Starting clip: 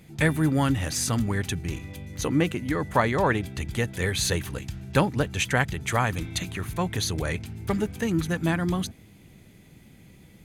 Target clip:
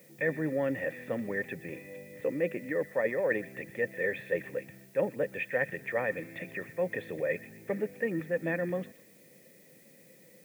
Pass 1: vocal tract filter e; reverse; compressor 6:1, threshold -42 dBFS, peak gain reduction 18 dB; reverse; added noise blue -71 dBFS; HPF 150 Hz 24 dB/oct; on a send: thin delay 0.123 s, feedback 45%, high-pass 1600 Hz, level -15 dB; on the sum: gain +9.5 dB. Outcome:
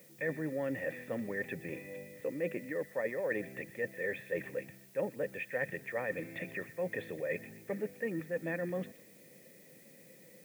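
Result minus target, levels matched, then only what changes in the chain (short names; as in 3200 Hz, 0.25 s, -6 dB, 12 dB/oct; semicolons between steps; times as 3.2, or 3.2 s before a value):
compressor: peak gain reduction +6 dB
change: compressor 6:1, threshold -35 dBFS, peak gain reduction 12 dB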